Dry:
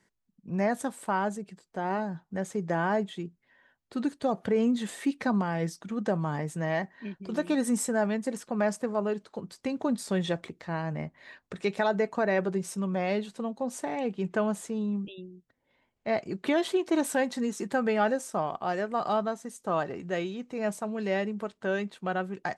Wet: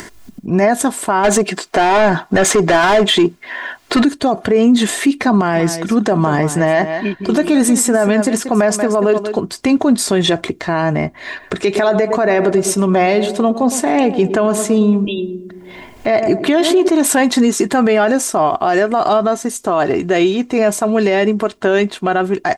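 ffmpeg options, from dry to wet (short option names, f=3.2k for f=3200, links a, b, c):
-filter_complex "[0:a]asplit=3[a][b][c];[a]afade=t=out:st=1.23:d=0.02[d];[b]asplit=2[e][f];[f]highpass=f=720:p=1,volume=23dB,asoftclip=type=tanh:threshold=-16.5dB[g];[e][g]amix=inputs=2:normalize=0,lowpass=f=4.3k:p=1,volume=-6dB,afade=t=in:st=1.23:d=0.02,afade=t=out:st=4.03:d=0.02[h];[c]afade=t=in:st=4.03:d=0.02[i];[d][h][i]amix=inputs=3:normalize=0,asplit=3[j][k][l];[j]afade=t=out:st=5.55:d=0.02[m];[k]aecho=1:1:185:0.2,afade=t=in:st=5.55:d=0.02,afade=t=out:st=9.4:d=0.02[n];[l]afade=t=in:st=9.4:d=0.02[o];[m][n][o]amix=inputs=3:normalize=0,asettb=1/sr,asplit=3[p][q][r];[p]atrim=end=11.184[s];[q]atrim=start=11.18:end=16.88,asetpts=PTS-STARTPTS,afade=t=in:d=0.004:c=qsin,afade=t=out:st=5.696:d=0.004:c=qsin,asplit=2[t][u];[u]adelay=110,lowpass=f=1k:p=1,volume=-12dB,asplit=2[v][w];[w]adelay=110,lowpass=f=1k:p=1,volume=0.51,asplit=2[x][y];[y]adelay=110,lowpass=f=1k:p=1,volume=0.51,asplit=2[z][aa];[aa]adelay=110,lowpass=f=1k:p=1,volume=0.51,asplit=2[ab][ac];[ac]adelay=110,lowpass=f=1k:p=1,volume=0.51[ad];[t][v][x][z][ab][ad]amix=inputs=6:normalize=0,atrim=end_sample=251370[ae];[r]atrim=start=16.876[af];[s][ae]acrossfade=d=0.004:c1=hsin:c2=qsin[ag];[ag][af]acrossfade=d=0.004:c1=qsin:c2=hsin,acompressor=mode=upward:threshold=-41dB:ratio=2.5,aecho=1:1:2.9:0.47,alimiter=level_in=24.5dB:limit=-1dB:release=50:level=0:latency=1,volume=-4dB"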